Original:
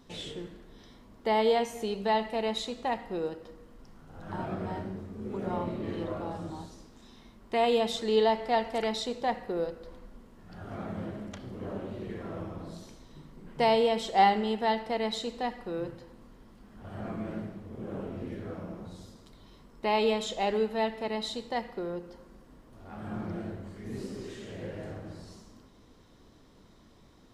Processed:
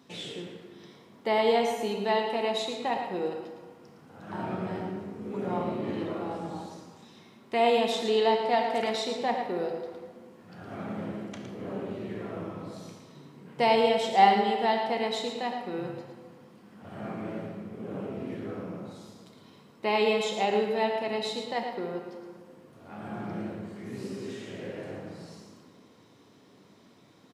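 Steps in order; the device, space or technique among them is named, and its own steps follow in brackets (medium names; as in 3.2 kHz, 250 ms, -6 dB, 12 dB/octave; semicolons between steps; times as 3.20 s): PA in a hall (high-pass 120 Hz 24 dB/octave; peaking EQ 2.4 kHz +4 dB 0.43 oct; delay 112 ms -8 dB; reverberation RT60 1.6 s, pre-delay 7 ms, DRR 5 dB)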